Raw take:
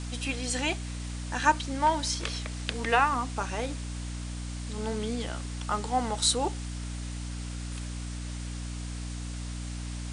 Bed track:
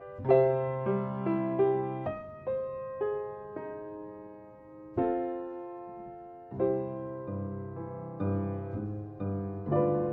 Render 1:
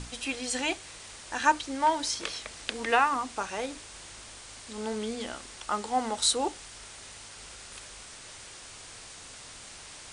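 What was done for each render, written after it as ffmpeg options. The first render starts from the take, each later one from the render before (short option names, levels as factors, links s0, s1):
-af "bandreject=f=60:t=h:w=6,bandreject=f=120:t=h:w=6,bandreject=f=180:t=h:w=6,bandreject=f=240:t=h:w=6,bandreject=f=300:t=h:w=6"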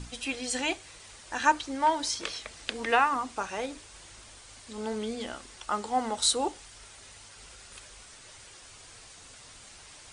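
-af "afftdn=nr=6:nf=-47"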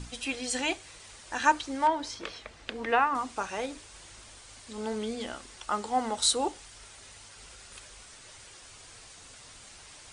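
-filter_complex "[0:a]asettb=1/sr,asplit=3[s0][s1][s2];[s0]atrim=end=1.874[s3];[s1]atrim=start=1.87:end=3.15,asetpts=PTS-STARTPTS,afade=t=in:d=0.004:c=qsin,afade=t=out:st=1.276:d=0.004:c=qsin,lowpass=f=2000:p=1[s4];[s2]atrim=start=3.146[s5];[s3][s4]acrossfade=d=0.004:c1=hsin:c2=qsin[s6];[s6][s5]acrossfade=d=0.004:c1=qsin:c2=hsin"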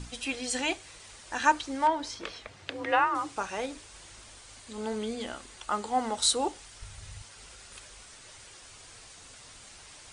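-filter_complex "[0:a]asettb=1/sr,asplit=3[s0][s1][s2];[s0]atrim=end=2.474[s3];[s1]atrim=start=2.47:end=3.36,asetpts=PTS-STARTPTS,afade=t=in:d=0.004:c=qsin,afade=t=out:st=0.886:d=0.004:c=qsin,afreqshift=46[s4];[s2]atrim=start=3.356[s5];[s3][s4]acrossfade=d=0.004:c1=hsin:c2=qsin[s6];[s6][s5]acrossfade=d=0.004:c1=qsin:c2=hsin,asettb=1/sr,asplit=3[s7][s8][s9];[s7]atrim=end=4.604[s10];[s8]atrim=start=4.6:end=6.03,asetpts=PTS-STARTPTS,afade=t=in:d=0.004:c=qsin,afade=t=out:st=1.426:d=0.004:c=qsin,bandreject=f=5400:w=12[s11];[s9]atrim=start=6.026[s12];[s10][s11]acrossfade=d=0.004:c1=hsin:c2=qsin[s13];[s13][s12]acrossfade=d=0.004:c1=qsin:c2=hsin,asettb=1/sr,asplit=3[s14][s15][s16];[s14]atrim=end=6.824[s17];[s15]atrim=start=6.82:end=7.22,asetpts=PTS-STARTPTS,afade=t=in:d=0.004:c=qsin,afade=t=out:st=0.396:d=0.004:c=qsin,lowshelf=f=180:t=q:w=1.5:g=13[s18];[s16]atrim=start=7.216[s19];[s17][s18]acrossfade=d=0.004:c1=hsin:c2=qsin[s20];[s20][s19]acrossfade=d=0.004:c1=qsin:c2=hsin"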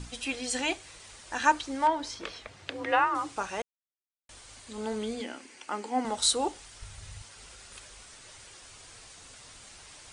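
-filter_complex "[0:a]asettb=1/sr,asplit=3[s0][s1][s2];[s0]atrim=end=5.214[s3];[s1]atrim=start=5.21:end=6.05,asetpts=PTS-STARTPTS,afade=t=in:d=0.004:c=qsin,afade=t=out:st=0.836:d=0.004:c=qsin,highpass=250,equalizer=f=270:t=q:w=4:g=9,equalizer=f=660:t=q:w=4:g=-5,equalizer=f=1200:t=q:w=4:g=-8,equalizer=f=2300:t=q:w=4:g=5,equalizer=f=3700:t=q:w=4:g=-9,equalizer=f=7200:t=q:w=4:g=-5,lowpass=f=8900:w=0.5412,lowpass=f=8900:w=1.3066[s4];[s2]atrim=start=6.046[s5];[s3][s4]acrossfade=d=0.004:c1=hsin:c2=qsin[s6];[s6][s5]acrossfade=d=0.004:c1=qsin:c2=hsin,asplit=3[s7][s8][s9];[s7]atrim=end=3.62,asetpts=PTS-STARTPTS,afade=t=out:st=3.616:d=0.004:c=hsin[s10];[s8]atrim=start=3.62:end=4.29,asetpts=PTS-STARTPTS,volume=0[s11];[s9]atrim=start=4.29,asetpts=PTS-STARTPTS,afade=t=in:d=0.004:c=hsin[s12];[s10][s11][s12]concat=n=3:v=0:a=1"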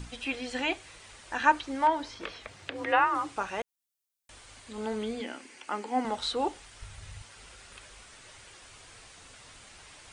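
-filter_complex "[0:a]highshelf=f=4000:g=11.5,acrossover=split=3100[s0][s1];[s1]acompressor=threshold=0.00158:ratio=4:attack=1:release=60[s2];[s0][s2]amix=inputs=2:normalize=0"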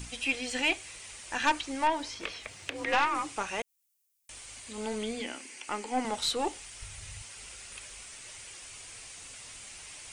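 -af "aeval=exprs='(tanh(8.91*val(0)+0.4)-tanh(0.4))/8.91':c=same,aexciter=amount=1.6:drive=7.1:freq=2100"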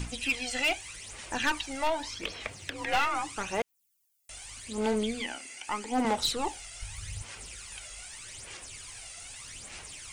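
-af "aphaser=in_gain=1:out_gain=1:delay=1.5:decay=0.58:speed=0.82:type=sinusoidal,asoftclip=type=hard:threshold=0.0891"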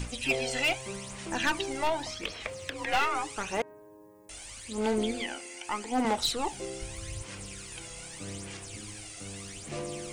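-filter_complex "[1:a]volume=0.282[s0];[0:a][s0]amix=inputs=2:normalize=0"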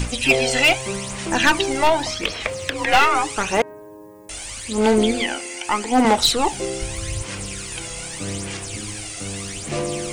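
-af "volume=3.98"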